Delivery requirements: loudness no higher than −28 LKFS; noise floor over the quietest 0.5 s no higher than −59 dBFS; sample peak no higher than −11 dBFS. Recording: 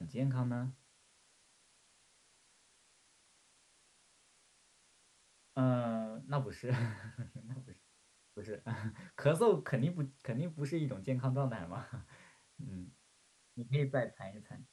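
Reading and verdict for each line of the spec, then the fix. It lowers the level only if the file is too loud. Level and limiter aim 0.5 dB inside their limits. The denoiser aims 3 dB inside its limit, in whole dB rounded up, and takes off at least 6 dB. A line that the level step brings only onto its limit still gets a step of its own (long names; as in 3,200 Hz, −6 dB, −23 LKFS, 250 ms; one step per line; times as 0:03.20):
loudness −37.0 LKFS: in spec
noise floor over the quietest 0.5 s −69 dBFS: in spec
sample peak −17.0 dBFS: in spec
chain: no processing needed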